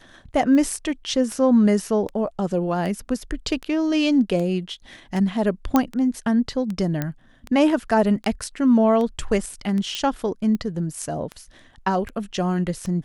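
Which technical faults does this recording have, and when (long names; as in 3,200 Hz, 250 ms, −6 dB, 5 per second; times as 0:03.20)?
scratch tick 78 rpm −18 dBFS
0:05.76: click −5 dBFS
0:07.02: click −11 dBFS
0:09.95: click −12 dBFS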